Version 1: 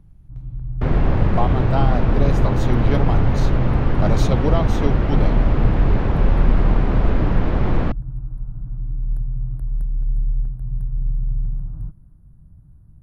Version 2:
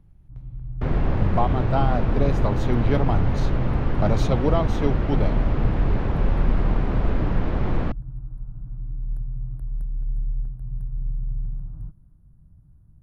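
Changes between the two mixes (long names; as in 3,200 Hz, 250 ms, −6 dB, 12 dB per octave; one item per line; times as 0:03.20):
speech: add high-shelf EQ 4,400 Hz −8.5 dB
first sound −5.5 dB
second sound −4.5 dB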